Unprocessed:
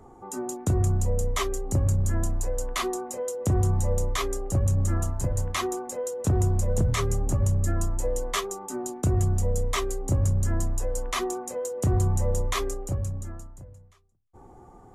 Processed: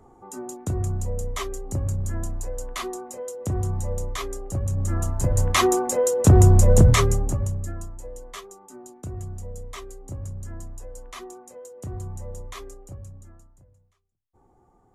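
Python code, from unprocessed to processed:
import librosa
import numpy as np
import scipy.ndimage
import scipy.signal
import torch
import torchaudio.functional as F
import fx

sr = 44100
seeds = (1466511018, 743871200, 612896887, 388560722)

y = fx.gain(x, sr, db=fx.line((4.67, -3.0), (5.67, 10.0), (6.88, 10.0), (7.47, -3.0), (7.96, -11.0)))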